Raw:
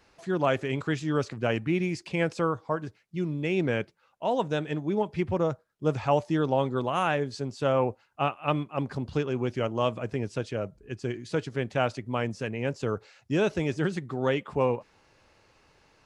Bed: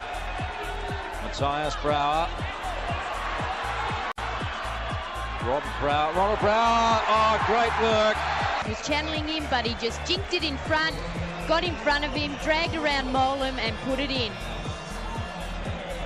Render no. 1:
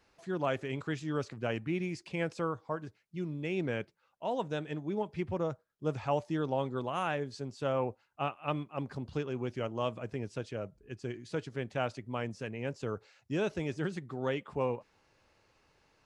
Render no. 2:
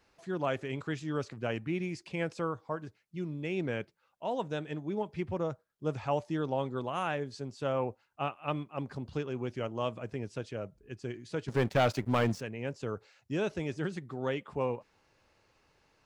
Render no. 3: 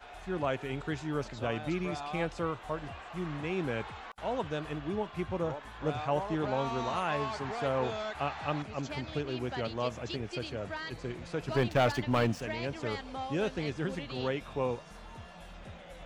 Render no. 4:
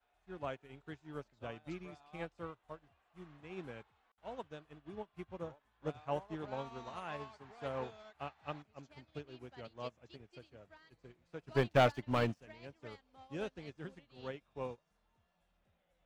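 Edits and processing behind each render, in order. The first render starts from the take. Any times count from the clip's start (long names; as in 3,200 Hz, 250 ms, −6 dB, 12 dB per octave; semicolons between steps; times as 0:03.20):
level −7 dB
0:11.48–0:12.41: leveller curve on the samples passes 3
mix in bed −15.5 dB
expander for the loud parts 2.5 to 1, over −43 dBFS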